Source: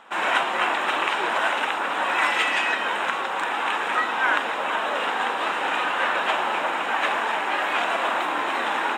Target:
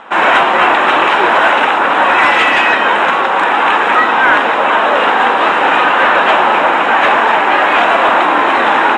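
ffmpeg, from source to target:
-af "apsyclip=7.08,aemphasis=mode=reproduction:type=75fm,volume=0.794"

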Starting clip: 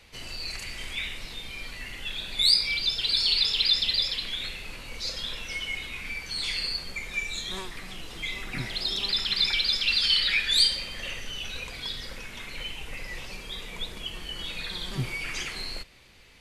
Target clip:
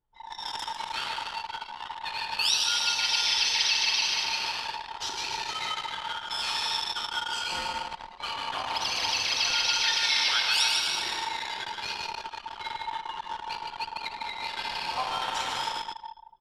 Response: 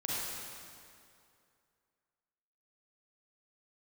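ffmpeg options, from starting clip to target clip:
-filter_complex "[0:a]acompressor=threshold=0.0282:ratio=1.5,aecho=1:1:150|285|406.5|515.8|614.3:0.631|0.398|0.251|0.158|0.1,asplit=2[s0][s1];[1:a]atrim=start_sample=2205[s2];[s1][s2]afir=irnorm=-1:irlink=0,volume=0.473[s3];[s0][s3]amix=inputs=2:normalize=0,aeval=exprs='val(0)*sin(2*PI*900*n/s)':c=same,anlmdn=10"

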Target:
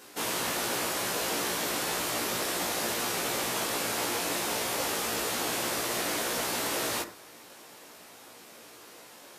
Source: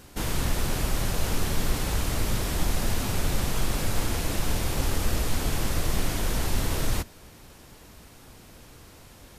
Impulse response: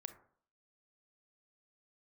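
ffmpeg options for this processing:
-filter_complex "[0:a]highpass=370,asplit=2[s0][s1];[1:a]atrim=start_sample=2205,adelay=17[s2];[s1][s2]afir=irnorm=-1:irlink=0,volume=1.58[s3];[s0][s3]amix=inputs=2:normalize=0"

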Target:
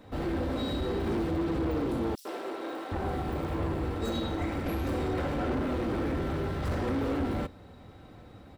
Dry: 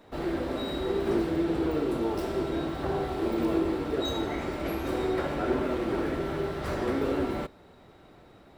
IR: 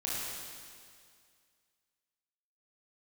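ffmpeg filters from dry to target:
-filter_complex "[0:a]equalizer=f=97:t=o:w=1.4:g=13.5,aecho=1:1:3.9:0.36,asoftclip=type=tanh:threshold=0.0531,asettb=1/sr,asplit=3[s0][s1][s2];[s0]atrim=end=2.154[s3];[s1]atrim=start=2.15:end=4.66,asetpts=PTS-STARTPTS,afade=t=in:d=0.004:c=qsin,afade=t=out:st=2.506:d=0.004:c=qsin,acrossover=split=330|4600[s4][s5][s6];[s5]adelay=100[s7];[s4]adelay=760[s8];[s8][s7][s6]amix=inputs=3:normalize=0,atrim=end_sample=110691[s9];[s2]atrim=start=4.656[s10];[s3][s9]acrossfade=d=0.004:c1=hsin:c2=qsin[s11];[s11][s10]acrossfade=d=0.004:c1=qsin:c2=hsin"

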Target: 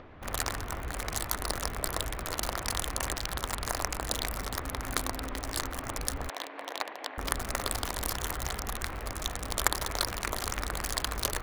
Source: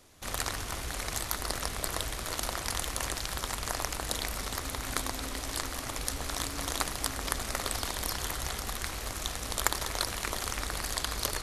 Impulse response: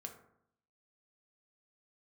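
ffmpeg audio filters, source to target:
-filter_complex "[0:a]asettb=1/sr,asplit=3[s0][s1][s2];[s0]atrim=end=6.294[s3];[s1]atrim=start=6.29:end=7.18,asetpts=PTS-STARTPTS,afade=t=in:d=0.004:c=qsin,afade=t=out:st=0.886:d=0.004:c=qsin,highpass=f=360:w=0.5412,highpass=f=360:w=1.3066,equalizer=f=390:t=q:w=4:g=-5,equalizer=f=1300:t=q:w=4:g=-9,equalizer=f=5000:t=q:w=4:g=-8,lowpass=f=5400:w=0.5412,lowpass=f=5400:w=1.3066[s4];[s2]atrim=start=7.176[s5];[s3][s4]acrossfade=d=0.004:c1=hsin:c2=qsin[s6];[s6][s5]acrossfade=d=0.004:c1=qsin:c2=hsin,acrossover=split=2400[s7][s8];[s8]acrusher=bits=4:mix=0:aa=0.5[s9];[s7][s9]amix=inputs=2:normalize=0,acompressor=mode=upward:threshold=0.00794:ratio=2.5,volume=1.19"

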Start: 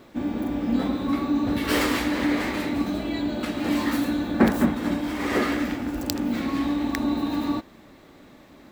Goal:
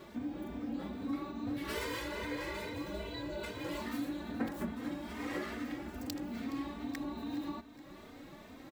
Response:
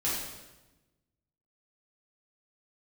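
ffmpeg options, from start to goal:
-filter_complex "[0:a]asettb=1/sr,asplit=3[s0][s1][s2];[s0]atrim=end=1.754[s3];[s1]atrim=start=1.75:end=3.81,asetpts=PTS-STARTPTS,afade=t=in:d=0.004:c=qsin,afade=t=out:st=2.056:d=0.004:c=qsin,aecho=1:1:2:0.81,atrim=end_sample=90846[s4];[s2]atrim=start=3.806[s5];[s3][s4]acrossfade=d=0.004:c1=hsin:c2=qsin[s6];[s6][s5]acrossfade=d=0.004:c1=qsin:c2=hsin,acompressor=threshold=0.00501:ratio=2,aecho=1:1:419|838|1257|1676|2095:0.133|0.076|0.0433|0.0247|0.0141,asplit=2[s7][s8];[s8]adelay=3.1,afreqshift=2.4[s9];[s7][s9]amix=inputs=2:normalize=1,volume=1.19"

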